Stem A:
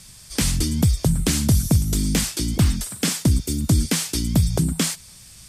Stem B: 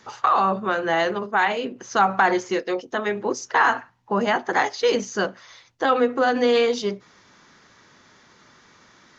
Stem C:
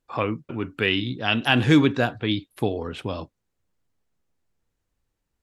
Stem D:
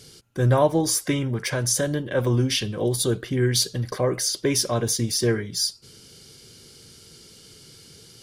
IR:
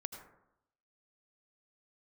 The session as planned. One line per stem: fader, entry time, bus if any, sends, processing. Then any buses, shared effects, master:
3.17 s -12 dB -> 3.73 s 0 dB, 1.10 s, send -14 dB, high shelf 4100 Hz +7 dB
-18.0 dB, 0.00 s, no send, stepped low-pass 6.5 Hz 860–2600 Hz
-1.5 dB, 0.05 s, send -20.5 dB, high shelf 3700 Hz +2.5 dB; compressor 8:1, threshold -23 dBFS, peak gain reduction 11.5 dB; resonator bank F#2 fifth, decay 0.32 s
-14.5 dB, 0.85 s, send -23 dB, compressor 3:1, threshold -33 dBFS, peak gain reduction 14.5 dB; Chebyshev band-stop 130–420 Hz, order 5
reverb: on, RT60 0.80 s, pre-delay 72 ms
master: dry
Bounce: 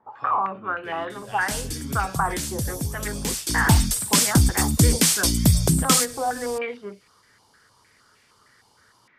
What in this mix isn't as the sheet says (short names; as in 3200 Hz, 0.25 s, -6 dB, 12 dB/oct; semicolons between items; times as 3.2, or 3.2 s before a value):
stem B -18.0 dB -> -11.5 dB; reverb return -8.5 dB